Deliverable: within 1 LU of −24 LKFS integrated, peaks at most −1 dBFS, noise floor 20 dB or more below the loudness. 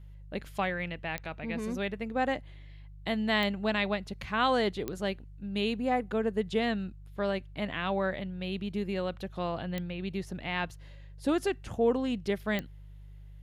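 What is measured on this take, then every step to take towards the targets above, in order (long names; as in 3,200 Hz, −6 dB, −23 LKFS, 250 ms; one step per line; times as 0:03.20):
number of clicks 5; mains hum 50 Hz; hum harmonics up to 150 Hz; level of the hum −45 dBFS; integrated loudness −32.0 LKFS; sample peak −14.5 dBFS; target loudness −24.0 LKFS
→ click removal
hum removal 50 Hz, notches 3
level +8 dB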